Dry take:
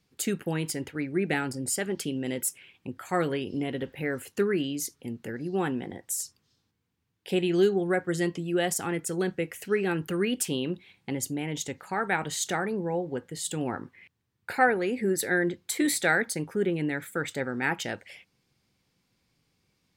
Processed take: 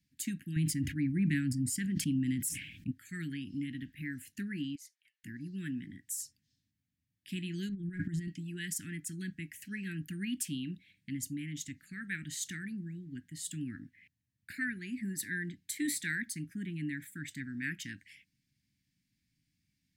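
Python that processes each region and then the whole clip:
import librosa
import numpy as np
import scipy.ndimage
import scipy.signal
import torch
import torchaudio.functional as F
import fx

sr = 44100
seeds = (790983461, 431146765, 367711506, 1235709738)

y = fx.chain(x, sr, fx.low_shelf(hz=340.0, db=10.5),
    fx.sustainer(db_per_s=62.0), at=(0.56, 2.91))
y = fx.chain(y, sr, fx.cheby1_highpass(hz=650.0, order=8),
    fx.tilt_eq(slope=-4.0),
    fx.doppler_dist(depth_ms=0.18), at=(4.75, 5.24))
y = fx.chain(y, sr, fx.tilt_eq(slope=-2.5),
    fx.transient(attack_db=6, sustain_db=10),
    fx.over_compress(threshold_db=-28.0, ratio=-1.0), at=(7.69, 8.28))
y = scipy.signal.sosfilt(scipy.signal.cheby1(4, 1.0, [290.0, 1700.0], 'bandstop', fs=sr, output='sos'), y)
y = fx.peak_eq(y, sr, hz=3500.0, db=-4.5, octaves=1.4)
y = y * 10.0 ** (-5.5 / 20.0)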